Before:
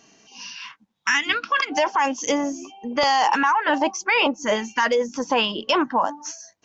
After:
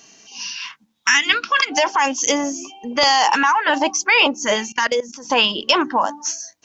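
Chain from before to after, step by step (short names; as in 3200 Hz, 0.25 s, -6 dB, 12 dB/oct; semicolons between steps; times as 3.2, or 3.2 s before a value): high shelf 2600 Hz +9.5 dB; de-hum 74.87 Hz, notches 5; 4.72–5.3 level quantiser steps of 19 dB; gain +1.5 dB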